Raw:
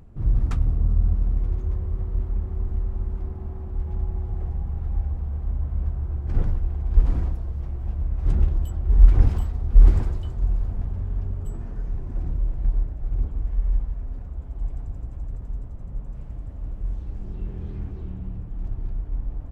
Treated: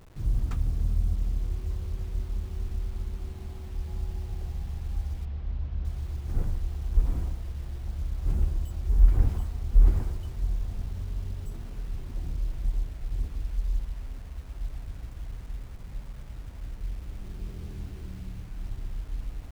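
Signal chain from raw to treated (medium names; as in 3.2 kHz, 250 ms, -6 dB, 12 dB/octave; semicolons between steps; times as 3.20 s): bit crusher 8-bit; 5.25–5.85 s: distance through air 200 m; trim -6 dB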